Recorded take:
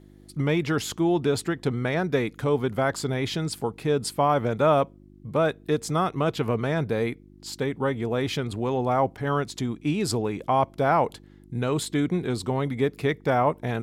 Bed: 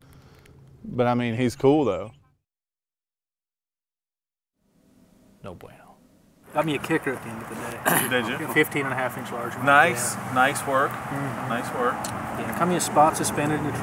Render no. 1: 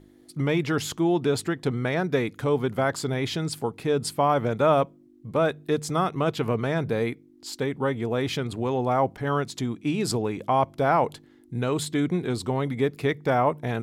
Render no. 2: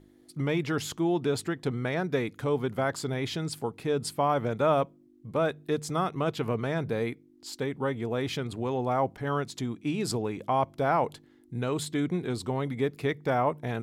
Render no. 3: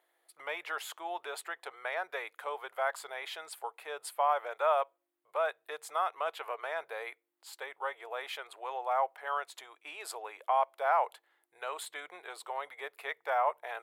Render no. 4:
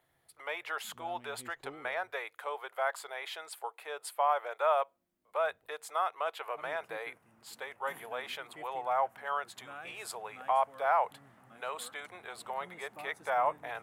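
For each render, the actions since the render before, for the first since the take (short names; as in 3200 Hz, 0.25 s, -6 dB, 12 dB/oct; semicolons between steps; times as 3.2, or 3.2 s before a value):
de-hum 50 Hz, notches 4
gain -4 dB
inverse Chebyshev high-pass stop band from 250 Hz, stop band 50 dB; bell 5600 Hz -13 dB 1.1 oct
add bed -30.5 dB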